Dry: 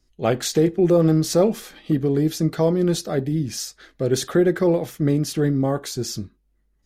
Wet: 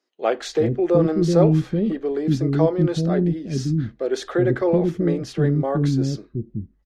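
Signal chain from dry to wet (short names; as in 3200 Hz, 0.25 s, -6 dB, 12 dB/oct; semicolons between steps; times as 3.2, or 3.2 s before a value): tape spacing loss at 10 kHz 20 dB; bands offset in time highs, lows 0.38 s, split 340 Hz; gain +3 dB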